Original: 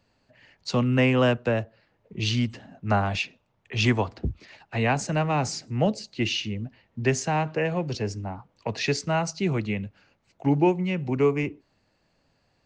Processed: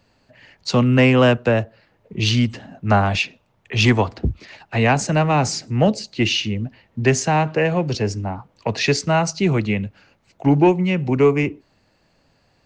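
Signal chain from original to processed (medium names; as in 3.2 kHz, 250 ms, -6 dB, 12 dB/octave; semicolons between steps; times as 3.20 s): saturation -10 dBFS, distortion -26 dB; trim +7.5 dB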